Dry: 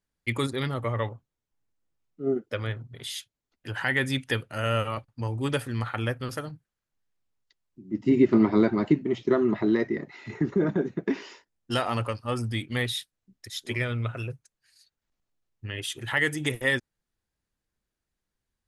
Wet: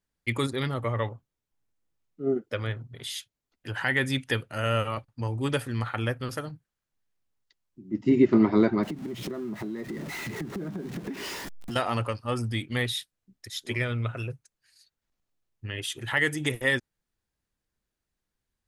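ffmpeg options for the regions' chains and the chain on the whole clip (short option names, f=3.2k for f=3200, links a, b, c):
-filter_complex "[0:a]asettb=1/sr,asplit=3[a][b][c];[a]atrim=end=8.834[d];[b]atrim=start=8.83:end=11.76,asetpts=PTS-STARTPTS,afade=t=in:d=0.004:c=qsin,afade=t=out:st=2.926:d=0.004:c=qsin,aeval=exprs='val(0)+0.5*0.0237*sgn(val(0))':c=same,equalizer=f=180:t=o:w=1.2:g=7.5,acompressor=threshold=-32dB:ratio=6:attack=3.2:release=140:knee=1:detection=peak[e];[c]atrim=start=11.756[f];[d][e]acrossfade=d=0.004:c1=hsin:c2=qsin[g];[g][f]acrossfade=d=0.004:c1=qsin:c2=hsin"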